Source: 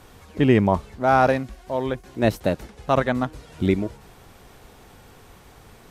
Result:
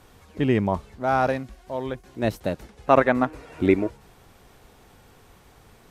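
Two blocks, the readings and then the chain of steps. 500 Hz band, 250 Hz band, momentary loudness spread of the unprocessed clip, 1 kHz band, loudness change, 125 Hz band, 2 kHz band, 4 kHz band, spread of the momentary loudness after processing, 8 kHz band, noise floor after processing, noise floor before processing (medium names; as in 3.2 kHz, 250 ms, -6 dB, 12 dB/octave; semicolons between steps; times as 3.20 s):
-1.0 dB, -2.0 dB, 12 LU, -2.0 dB, -2.0 dB, -4.5 dB, -1.0 dB, -4.5 dB, 13 LU, no reading, -54 dBFS, -50 dBFS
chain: time-frequency box 2.87–3.90 s, 240–2800 Hz +8 dB; trim -4.5 dB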